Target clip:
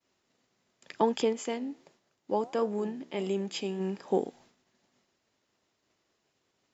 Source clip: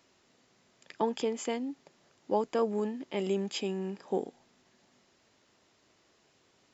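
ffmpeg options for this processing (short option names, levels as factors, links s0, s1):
-filter_complex "[0:a]agate=range=0.0224:threshold=0.00126:ratio=3:detection=peak,asplit=3[s0][s1][s2];[s0]afade=t=out:st=1.32:d=0.02[s3];[s1]flanger=delay=9.1:depth=6.3:regen=-85:speed=1.5:shape=sinusoidal,afade=t=in:st=1.32:d=0.02,afade=t=out:st=3.79:d=0.02[s4];[s2]afade=t=in:st=3.79:d=0.02[s5];[s3][s4][s5]amix=inputs=3:normalize=0,volume=1.58"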